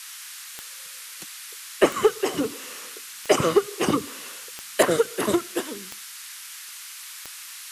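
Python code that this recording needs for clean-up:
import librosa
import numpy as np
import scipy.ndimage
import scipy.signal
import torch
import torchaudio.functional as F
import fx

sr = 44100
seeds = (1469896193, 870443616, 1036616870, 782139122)

y = fx.fix_declick_ar(x, sr, threshold=10.0)
y = fx.noise_reduce(y, sr, print_start_s=0.69, print_end_s=1.19, reduce_db=30.0)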